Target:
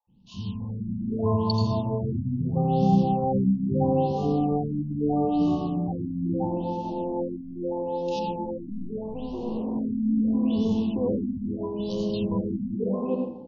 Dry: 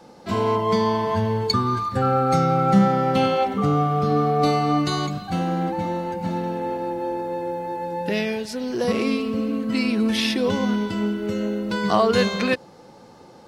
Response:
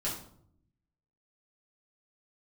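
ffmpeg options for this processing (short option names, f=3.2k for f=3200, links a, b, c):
-filter_complex "[0:a]acrossover=split=390[a][b];[b]acompressor=threshold=-23dB:ratio=6[c];[a][c]amix=inputs=2:normalize=0,asettb=1/sr,asplit=3[d][e][f];[d]atrim=end=8.194[g];[e]atrim=start=8.19:end=9.41,asetpts=PTS-STARTPTS,afade=t=in:d=0.004:c=qsin,afade=t=out:st=1.216:d=0.004:c=qsin,asoftclip=type=hard:threshold=-28.5dB[h];[f]atrim=start=9.406[i];[g][h]acrossfade=d=0.004:c1=hsin:c2=qsin[j];[j][i]acrossfade=d=0.004:c1=qsin:c2=hsin,adynamicsmooth=sensitivity=6.5:basefreq=660,asuperstop=centerf=1700:order=12:qfactor=0.98,acrossover=split=200|1900[k][l][m];[k]adelay=70[n];[l]adelay=600[o];[n][o][m]amix=inputs=3:normalize=0,asplit=2[p][q];[1:a]atrim=start_sample=2205,lowshelf=f=410:g=3.5,adelay=82[r];[q][r]afir=irnorm=-1:irlink=0,volume=-8dB[s];[p][s]amix=inputs=2:normalize=0,afftfilt=real='re*lt(b*sr/1024,290*pow(7100/290,0.5+0.5*sin(2*PI*0.77*pts/sr)))':imag='im*lt(b*sr/1024,290*pow(7100/290,0.5+0.5*sin(2*PI*0.77*pts/sr)))':win_size=1024:overlap=0.75,volume=-3.5dB"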